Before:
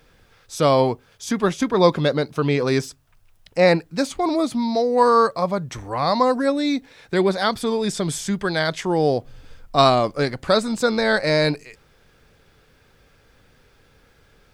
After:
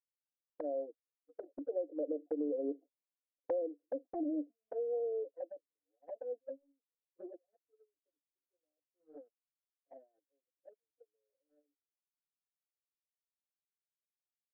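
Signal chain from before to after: Doppler pass-by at 3.00 s, 11 m/s, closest 2.4 m; Chebyshev band-pass 290–690 Hz, order 5; gate -46 dBFS, range -34 dB; comb 3.9 ms, depth 90%; compression 12:1, threshold -34 dBFS, peak gain reduction 17.5 dB; touch-sensitive flanger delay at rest 7.7 ms, full sweep at -35 dBFS; trim +2.5 dB

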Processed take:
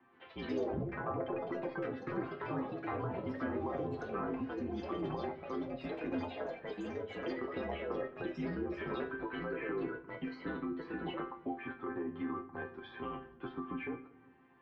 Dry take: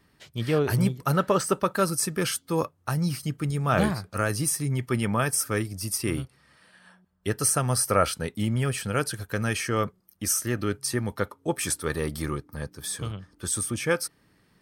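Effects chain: low-pass that closes with the level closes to 490 Hz, closed at -21 dBFS; mistuned SSB -52 Hz 190–3100 Hz; compression, threshold -31 dBFS, peak gain reduction 10.5 dB; chord resonator C4 sus4, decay 0.26 s; peak limiter -48.5 dBFS, peak gain reduction 8.5 dB; peaking EQ 910 Hz +10 dB 0.32 oct; reverberation RT60 1.0 s, pre-delay 7 ms, DRR 11.5 dB; ever faster or slower copies 129 ms, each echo +4 st, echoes 3; treble shelf 2.4 kHz -11.5 dB; trim +18 dB

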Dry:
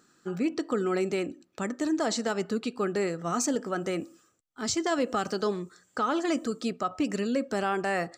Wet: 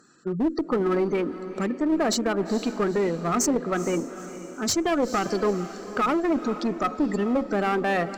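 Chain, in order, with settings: spectral gate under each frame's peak -20 dB strong; one-sided clip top -27.5 dBFS; echo that smears into a reverb 461 ms, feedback 45%, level -12.5 dB; trim +6 dB

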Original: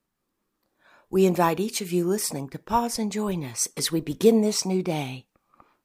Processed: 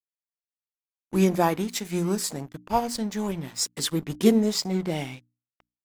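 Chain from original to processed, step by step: crossover distortion -41 dBFS; formant shift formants -2 st; hum notches 60/120/180/240/300 Hz

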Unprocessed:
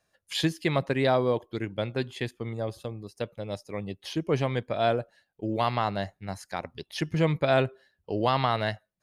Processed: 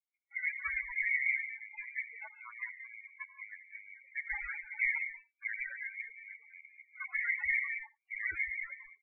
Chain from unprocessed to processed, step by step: rattle on loud lows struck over -39 dBFS, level -16 dBFS; 4.36–5.63 s: hum notches 50/100/150/200/250 Hz; spectral gate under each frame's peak -30 dB weak; bass shelf 83 Hz +4 dB; waveshaping leveller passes 3; resonant low-pass 2.2 kHz, resonance Q 8.5; delay 82 ms -19.5 dB; gated-style reverb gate 230 ms rising, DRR 8 dB; loudest bins only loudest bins 8; random flutter of the level, depth 60%; trim +7.5 dB

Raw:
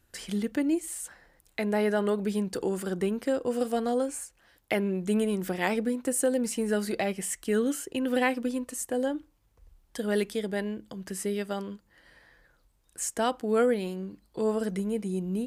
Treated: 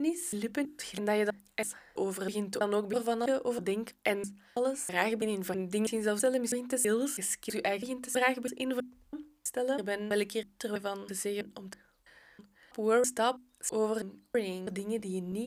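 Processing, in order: slices played last to first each 326 ms, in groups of 3; bass shelf 280 Hz -8 dB; hum notches 50/100/150/200/250/300/350 Hz

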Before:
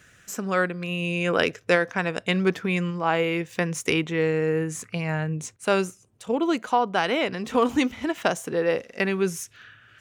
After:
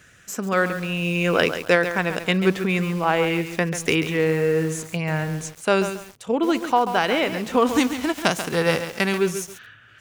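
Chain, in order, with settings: 7.66–9.18 s: formants flattened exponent 0.6; bit-crushed delay 138 ms, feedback 35%, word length 6-bit, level -9 dB; trim +2.5 dB

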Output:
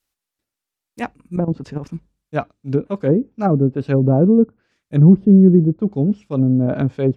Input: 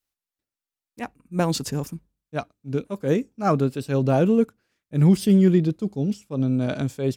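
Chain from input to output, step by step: low-pass that closes with the level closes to 420 Hz, closed at -17.5 dBFS; 1.36–1.94 s: level held to a coarse grid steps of 12 dB; 4.09–5.27 s: dynamic bell 1.1 kHz, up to +6 dB, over -42 dBFS, Q 1.3; trim +7 dB

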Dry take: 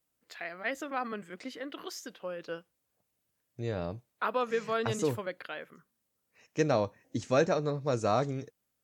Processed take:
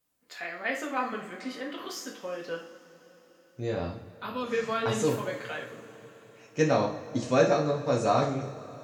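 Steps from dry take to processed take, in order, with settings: 3.86–4.44 s: high-order bell 1 kHz -10 dB 2.8 oct; two-slope reverb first 0.43 s, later 4.6 s, from -21 dB, DRR -2 dB

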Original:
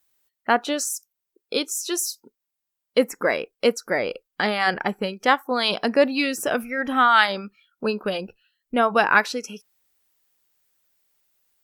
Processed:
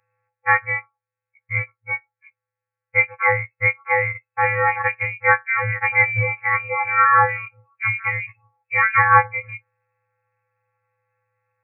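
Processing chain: partials quantised in pitch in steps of 3 st; in parallel at -2 dB: compression, threshold -29 dBFS, peak gain reduction 18.5 dB; on the sum: frequency inversion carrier 2.6 kHz

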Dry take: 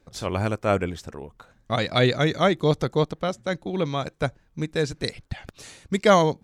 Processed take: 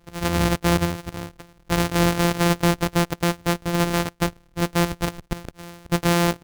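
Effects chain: sorted samples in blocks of 256 samples; loudness maximiser +13.5 dB; trim -8.5 dB

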